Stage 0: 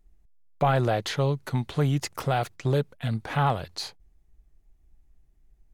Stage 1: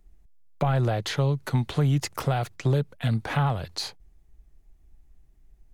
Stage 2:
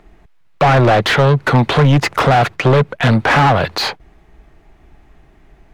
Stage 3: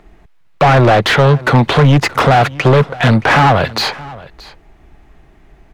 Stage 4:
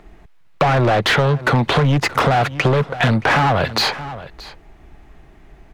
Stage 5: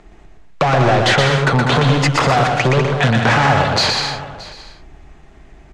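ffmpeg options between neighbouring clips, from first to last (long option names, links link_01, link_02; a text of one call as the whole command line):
ffmpeg -i in.wav -filter_complex "[0:a]acrossover=split=160[link_01][link_02];[link_02]acompressor=threshold=-31dB:ratio=3[link_03];[link_01][link_03]amix=inputs=2:normalize=0,volume=4dB" out.wav
ffmpeg -i in.wav -filter_complex "[0:a]bass=frequency=250:gain=2,treble=frequency=4000:gain=-10,asplit=2[link_01][link_02];[link_02]highpass=frequency=720:poles=1,volume=28dB,asoftclip=type=tanh:threshold=-10.5dB[link_03];[link_01][link_03]amix=inputs=2:normalize=0,lowpass=frequency=2200:poles=1,volume=-6dB,volume=7.5dB" out.wav
ffmpeg -i in.wav -af "aecho=1:1:623:0.0944,volume=2dB" out.wav
ffmpeg -i in.wav -af "acompressor=threshold=-13dB:ratio=6" out.wav
ffmpeg -i in.wav -filter_complex "[0:a]lowpass=frequency=7500:width_type=q:width=1.6,asplit=2[link_01][link_02];[link_02]aecho=0:1:120|198|248.7|281.7|303.1:0.631|0.398|0.251|0.158|0.1[link_03];[link_01][link_03]amix=inputs=2:normalize=0" out.wav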